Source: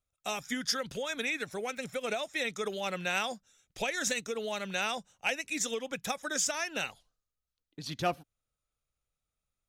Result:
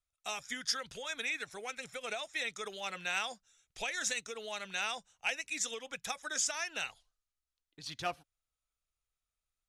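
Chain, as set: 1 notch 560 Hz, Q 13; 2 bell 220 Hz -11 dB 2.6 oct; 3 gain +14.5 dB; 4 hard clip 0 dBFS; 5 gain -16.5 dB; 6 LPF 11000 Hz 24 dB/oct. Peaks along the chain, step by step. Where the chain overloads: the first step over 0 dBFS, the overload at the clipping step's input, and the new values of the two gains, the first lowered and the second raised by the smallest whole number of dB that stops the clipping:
-18.0, -18.0, -3.5, -3.5, -20.0, -20.0 dBFS; no overload

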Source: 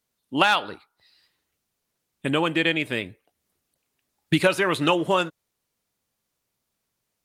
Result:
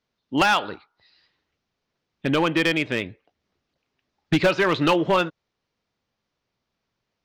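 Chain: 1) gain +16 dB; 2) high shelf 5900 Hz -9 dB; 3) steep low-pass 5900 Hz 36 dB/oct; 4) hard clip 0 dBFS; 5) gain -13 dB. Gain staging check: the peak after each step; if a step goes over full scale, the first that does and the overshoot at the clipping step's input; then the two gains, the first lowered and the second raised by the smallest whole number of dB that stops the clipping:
+9.5, +9.0, +9.0, 0.0, -13.0 dBFS; step 1, 9.0 dB; step 1 +7 dB, step 5 -4 dB

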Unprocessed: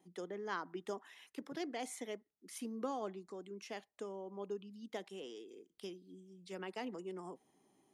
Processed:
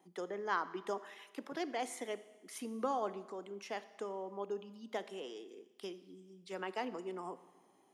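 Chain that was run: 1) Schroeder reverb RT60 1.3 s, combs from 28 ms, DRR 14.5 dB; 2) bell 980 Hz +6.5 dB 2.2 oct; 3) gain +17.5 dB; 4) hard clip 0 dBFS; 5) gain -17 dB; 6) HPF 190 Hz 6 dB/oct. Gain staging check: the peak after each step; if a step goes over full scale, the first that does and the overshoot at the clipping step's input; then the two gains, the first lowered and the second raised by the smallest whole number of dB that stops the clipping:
-26.5, -21.0, -3.5, -3.5, -20.5, -21.0 dBFS; no overload

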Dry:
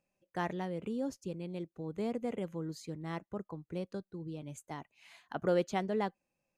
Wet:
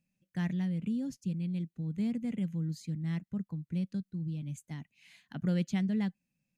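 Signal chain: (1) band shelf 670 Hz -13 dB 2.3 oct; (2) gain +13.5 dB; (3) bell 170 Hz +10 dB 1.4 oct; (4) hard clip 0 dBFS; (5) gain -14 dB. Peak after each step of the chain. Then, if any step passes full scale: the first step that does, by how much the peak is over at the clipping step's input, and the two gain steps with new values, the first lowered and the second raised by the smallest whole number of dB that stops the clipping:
-25.0, -11.5, -6.0, -6.0, -20.0 dBFS; no overload

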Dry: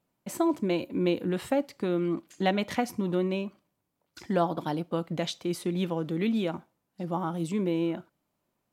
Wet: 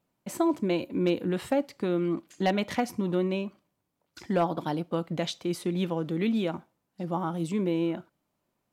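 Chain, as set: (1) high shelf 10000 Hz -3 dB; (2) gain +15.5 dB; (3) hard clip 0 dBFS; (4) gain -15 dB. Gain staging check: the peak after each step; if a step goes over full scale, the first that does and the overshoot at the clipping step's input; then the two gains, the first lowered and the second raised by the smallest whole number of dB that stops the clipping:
-10.5, +5.0, 0.0, -15.0 dBFS; step 2, 5.0 dB; step 2 +10.5 dB, step 4 -10 dB

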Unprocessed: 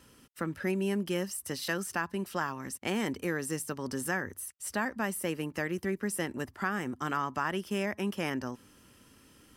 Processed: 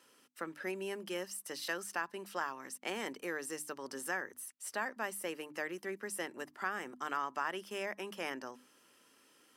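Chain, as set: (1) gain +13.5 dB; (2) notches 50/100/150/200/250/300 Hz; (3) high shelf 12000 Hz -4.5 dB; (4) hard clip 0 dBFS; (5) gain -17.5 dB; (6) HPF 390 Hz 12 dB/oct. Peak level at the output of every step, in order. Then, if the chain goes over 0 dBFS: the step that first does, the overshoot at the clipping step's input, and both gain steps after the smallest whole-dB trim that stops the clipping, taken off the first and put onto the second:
-3.0, -3.0, -3.0, -3.0, -20.5, -21.0 dBFS; no overload

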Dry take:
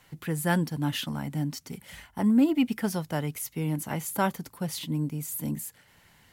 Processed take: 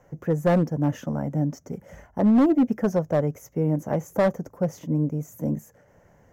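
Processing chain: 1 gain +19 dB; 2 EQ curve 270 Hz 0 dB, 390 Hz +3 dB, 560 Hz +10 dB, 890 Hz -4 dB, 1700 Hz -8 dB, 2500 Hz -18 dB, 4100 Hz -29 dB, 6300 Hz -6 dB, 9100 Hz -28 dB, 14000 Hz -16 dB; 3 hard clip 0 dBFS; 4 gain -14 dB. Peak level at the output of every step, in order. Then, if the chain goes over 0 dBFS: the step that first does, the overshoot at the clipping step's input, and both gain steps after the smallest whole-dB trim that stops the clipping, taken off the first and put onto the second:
+7.0, +7.0, 0.0, -14.0 dBFS; step 1, 7.0 dB; step 1 +12 dB, step 4 -7 dB

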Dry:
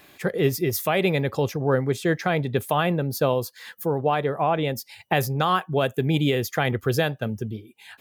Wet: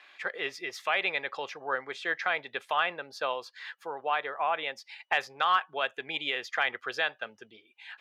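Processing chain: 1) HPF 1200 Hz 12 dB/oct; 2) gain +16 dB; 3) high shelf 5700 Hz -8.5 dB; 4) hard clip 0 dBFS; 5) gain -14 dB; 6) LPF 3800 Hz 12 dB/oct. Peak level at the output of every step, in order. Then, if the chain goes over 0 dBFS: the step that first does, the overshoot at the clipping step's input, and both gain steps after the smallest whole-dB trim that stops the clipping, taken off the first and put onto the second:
-11.5, +4.5, +3.5, 0.0, -14.0, -13.5 dBFS; step 2, 3.5 dB; step 2 +12 dB, step 5 -10 dB

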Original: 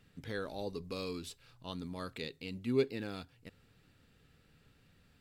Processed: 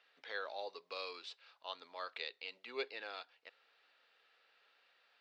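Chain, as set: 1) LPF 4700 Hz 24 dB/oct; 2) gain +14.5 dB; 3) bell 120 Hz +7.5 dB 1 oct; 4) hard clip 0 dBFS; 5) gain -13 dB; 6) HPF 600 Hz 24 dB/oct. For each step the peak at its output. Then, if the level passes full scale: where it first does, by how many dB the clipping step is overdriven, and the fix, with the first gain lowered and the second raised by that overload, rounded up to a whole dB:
-19.0, -4.5, -3.0, -3.0, -16.0, -25.5 dBFS; no overload

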